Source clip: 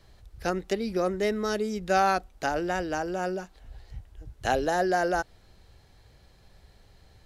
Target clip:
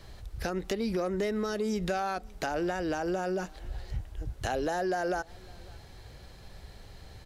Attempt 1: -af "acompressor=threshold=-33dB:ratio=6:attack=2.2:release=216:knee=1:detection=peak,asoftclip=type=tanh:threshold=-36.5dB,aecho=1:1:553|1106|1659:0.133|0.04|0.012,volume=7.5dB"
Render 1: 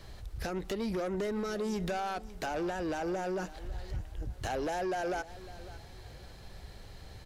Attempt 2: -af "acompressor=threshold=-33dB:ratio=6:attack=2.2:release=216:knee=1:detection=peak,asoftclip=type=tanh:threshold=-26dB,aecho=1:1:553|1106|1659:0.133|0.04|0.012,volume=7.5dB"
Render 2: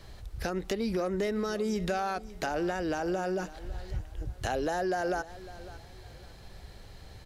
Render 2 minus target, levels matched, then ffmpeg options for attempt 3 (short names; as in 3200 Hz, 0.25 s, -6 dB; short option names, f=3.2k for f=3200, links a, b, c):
echo-to-direct +9 dB
-af "acompressor=threshold=-33dB:ratio=6:attack=2.2:release=216:knee=1:detection=peak,asoftclip=type=tanh:threshold=-26dB,aecho=1:1:553|1106:0.0473|0.0142,volume=7.5dB"